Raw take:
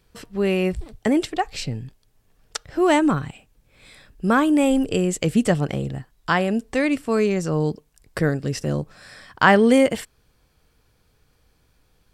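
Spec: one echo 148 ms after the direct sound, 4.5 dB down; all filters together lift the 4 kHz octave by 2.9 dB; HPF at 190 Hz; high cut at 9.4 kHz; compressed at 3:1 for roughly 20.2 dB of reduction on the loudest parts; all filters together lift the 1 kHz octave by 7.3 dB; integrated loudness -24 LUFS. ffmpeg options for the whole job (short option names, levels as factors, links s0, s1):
-af "highpass=190,lowpass=9400,equalizer=f=1000:t=o:g=9,equalizer=f=4000:t=o:g=3.5,acompressor=threshold=0.0251:ratio=3,aecho=1:1:148:0.596,volume=2.51"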